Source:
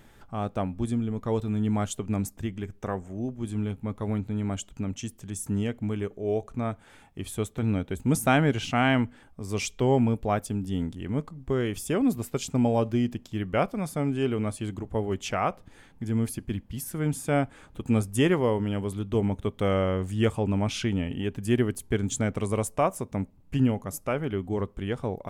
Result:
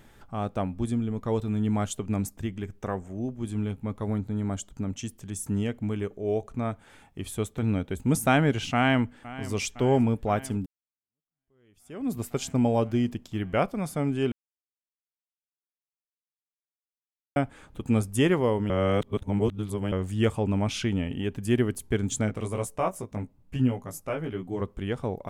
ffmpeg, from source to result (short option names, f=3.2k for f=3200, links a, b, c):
-filter_complex "[0:a]asettb=1/sr,asplit=3[a][b][c];[a]atrim=end=4.054[d];[b]atrim=start=4.05:end=4.92,asetpts=PTS-STARTPTS,afade=t=in:d=0.004:c=qsin,afade=t=out:st=0.866:d=0.004:c=qsin,equalizer=f=2.6k:t=o:w=0.51:g=-8[e];[c]atrim=start=4.916[f];[d][e]acrossfade=d=0.004:c1=hsin:c2=qsin[g];[g][f]acrossfade=d=0.004:c1=qsin:c2=hsin,asplit=2[h][i];[i]afade=t=in:st=8.73:d=0.01,afade=t=out:st=9.54:d=0.01,aecho=0:1:510|1020|1530|2040|2550|3060|3570|4080|4590|5100:0.149624|0.112218|0.0841633|0.0631224|0.0473418|0.0355064|0.0266298|0.0199723|0.0149793|0.0112344[j];[h][j]amix=inputs=2:normalize=0,asplit=3[k][l][m];[k]afade=t=out:st=22.24:d=0.02[n];[l]flanger=delay=16:depth=2.6:speed=1.1,afade=t=in:st=22.24:d=0.02,afade=t=out:st=24.6:d=0.02[o];[m]afade=t=in:st=24.6:d=0.02[p];[n][o][p]amix=inputs=3:normalize=0,asplit=6[q][r][s][t][u][v];[q]atrim=end=10.66,asetpts=PTS-STARTPTS,afade=t=out:st=10.656:d=0.004:c=hsin[w];[r]atrim=start=10.66:end=14.32,asetpts=PTS-STARTPTS,afade=t=in:d=1.5:c=exp,afade=t=out:st=3.656:d=0.004:c=hsin[x];[s]atrim=start=14.32:end=17.36,asetpts=PTS-STARTPTS,volume=0[y];[t]atrim=start=17.36:end=18.702,asetpts=PTS-STARTPTS,afade=t=in:d=0.004:c=hsin[z];[u]atrim=start=18.698:end=19.922,asetpts=PTS-STARTPTS,areverse[aa];[v]atrim=start=19.918[ab];[w][x][y][z]concat=n=4:v=0:a=1[ac];[ac][aa]acrossfade=d=0.004:c1=hsin:c2=hsin[ad];[ad][ab]acrossfade=d=0.004:c1=hsin:c2=hsin"